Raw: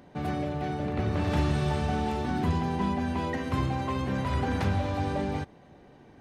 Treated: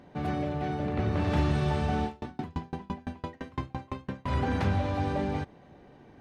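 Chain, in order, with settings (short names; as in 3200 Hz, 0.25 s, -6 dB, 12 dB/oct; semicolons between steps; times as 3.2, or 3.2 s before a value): high shelf 7500 Hz -9.5 dB; 2.05–4.28 dB-ramp tremolo decaying 5.9 Hz, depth 34 dB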